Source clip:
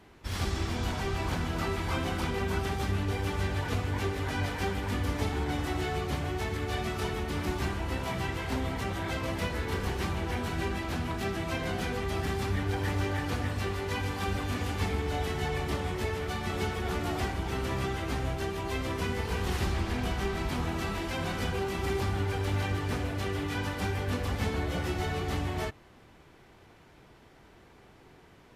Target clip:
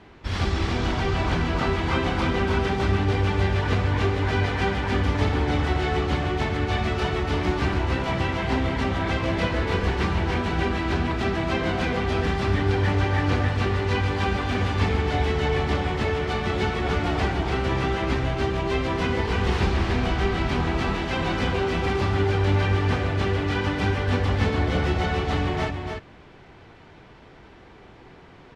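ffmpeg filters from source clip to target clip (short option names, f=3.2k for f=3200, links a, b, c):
-af "lowpass=4.5k,aecho=1:1:288:0.531,volume=7dB"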